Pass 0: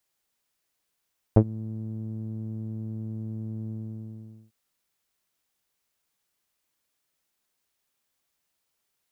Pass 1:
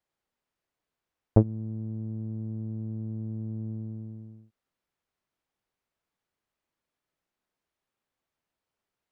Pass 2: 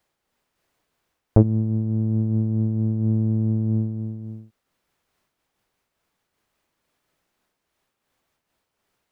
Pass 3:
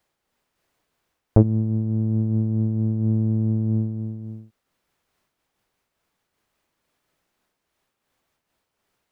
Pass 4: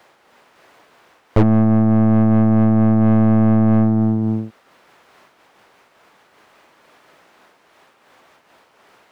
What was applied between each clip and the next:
LPF 1300 Hz 6 dB/oct
maximiser +15 dB; noise-modulated level, depth 60%
nothing audible
overdrive pedal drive 38 dB, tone 1200 Hz, clips at -3 dBFS; gain -1.5 dB

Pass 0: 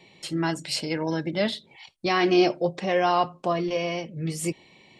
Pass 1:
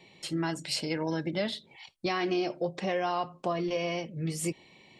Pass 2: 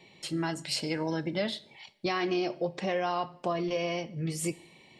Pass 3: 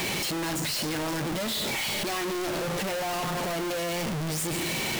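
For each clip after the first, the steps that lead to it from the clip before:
compressor 10:1, threshold -23 dBFS, peak gain reduction 9 dB; gain -2.5 dB
two-slope reverb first 0.61 s, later 1.8 s, DRR 16 dB
infinite clipping; gain +3 dB

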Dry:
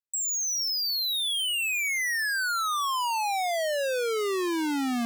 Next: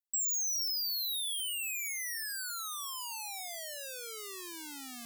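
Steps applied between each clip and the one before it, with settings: pre-emphasis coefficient 0.9; gain -3 dB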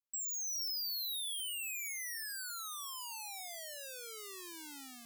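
AGC gain up to 3.5 dB; gain -7.5 dB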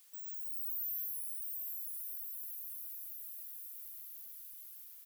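inverse Chebyshev band-stop 310–5000 Hz, stop band 60 dB; echo 0.13 s -7 dB; added noise blue -67 dBFS; gain +5 dB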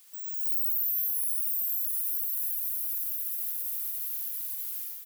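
AGC gain up to 10 dB; on a send: echo 71 ms -4.5 dB; on the sum: limiter -25.5 dBFS, peak gain reduction 8.5 dB; gain +5.5 dB

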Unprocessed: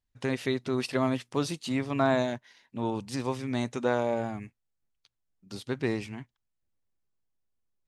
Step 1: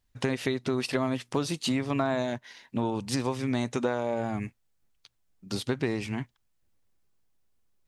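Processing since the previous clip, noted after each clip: compressor, threshold -34 dBFS, peak gain reduction 13 dB; gain +9 dB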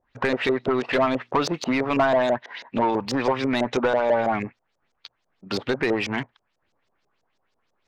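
LFO low-pass saw up 6.1 Hz 490–6800 Hz; overdrive pedal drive 20 dB, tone 1900 Hz, clips at -9.5 dBFS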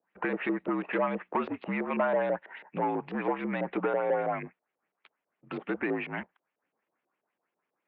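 modulation noise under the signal 32 dB; mistuned SSB -58 Hz 250–2700 Hz; gain -7 dB

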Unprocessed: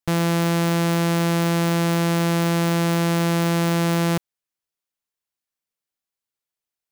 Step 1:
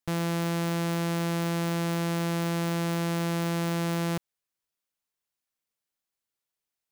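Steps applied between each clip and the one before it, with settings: limiter -23.5 dBFS, peak gain reduction 8 dB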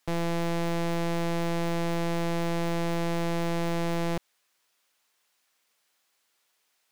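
overdrive pedal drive 25 dB, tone 5500 Hz, clips at -23 dBFS

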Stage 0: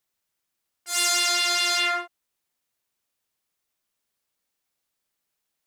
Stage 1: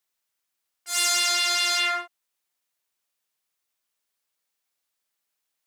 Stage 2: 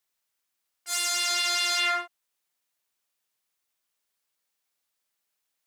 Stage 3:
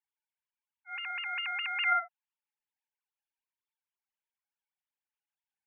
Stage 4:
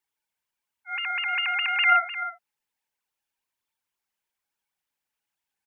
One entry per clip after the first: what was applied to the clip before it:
low shelf 400 Hz -9.5 dB
limiter -13.5 dBFS, peak gain reduction 6 dB
sine-wave speech; gain -6 dB
echo 0.303 s -12.5 dB; gain +8.5 dB

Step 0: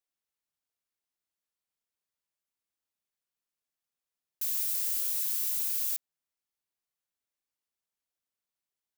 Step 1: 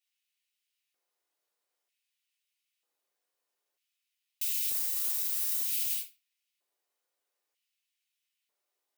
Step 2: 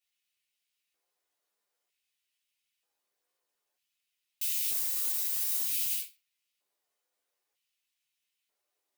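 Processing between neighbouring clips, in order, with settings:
shoebox room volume 290 m³, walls furnished, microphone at 3.4 m; limiter -21.5 dBFS, peak gain reduction 7.5 dB; LFO high-pass square 0.53 Hz 490–2600 Hz
chorus voices 2, 0.75 Hz, delay 13 ms, depth 3.5 ms; gain +4 dB

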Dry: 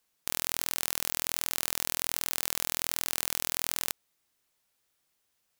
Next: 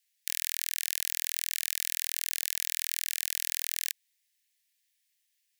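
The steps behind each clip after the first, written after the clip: steep high-pass 1700 Hz 96 dB/oct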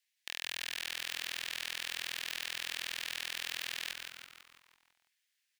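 soft clip -12 dBFS, distortion -9 dB; overdrive pedal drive 12 dB, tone 2700 Hz, clips at -5 dBFS; frequency-shifting echo 0.166 s, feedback 53%, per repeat -140 Hz, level -5 dB; gain -5.5 dB

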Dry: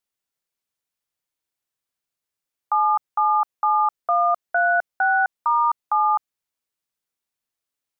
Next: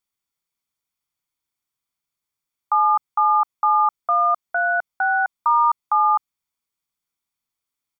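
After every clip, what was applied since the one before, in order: comb 0.9 ms, depth 43%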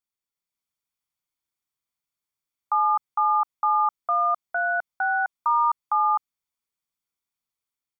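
AGC gain up to 4 dB; gain -8 dB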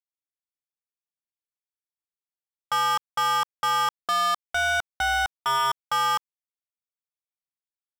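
sample leveller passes 5; gain -7 dB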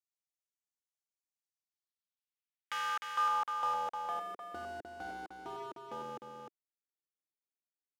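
wrapped overs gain 24 dB; band-pass sweep 6700 Hz -> 340 Hz, 1.39–4.57; echo 0.304 s -5.5 dB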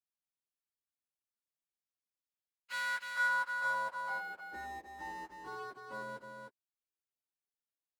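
inharmonic rescaling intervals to 112%

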